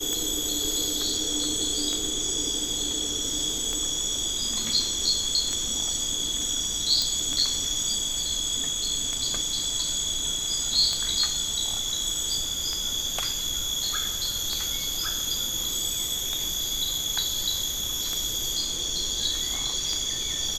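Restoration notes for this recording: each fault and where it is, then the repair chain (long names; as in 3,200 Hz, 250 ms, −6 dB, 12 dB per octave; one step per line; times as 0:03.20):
scratch tick 33 1/3 rpm −14 dBFS
0:07.02: click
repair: click removal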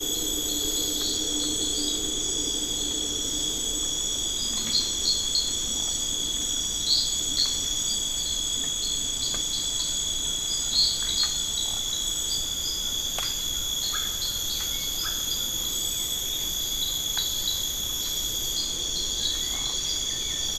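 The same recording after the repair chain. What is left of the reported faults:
none of them is left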